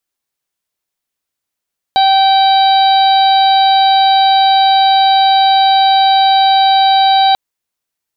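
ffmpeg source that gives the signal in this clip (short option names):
-f lavfi -i "aevalsrc='0.447*sin(2*PI*776*t)+0.0562*sin(2*PI*1552*t)+0.0447*sin(2*PI*2328*t)+0.0668*sin(2*PI*3104*t)+0.178*sin(2*PI*3880*t)+0.0501*sin(2*PI*4656*t)':d=5.39:s=44100"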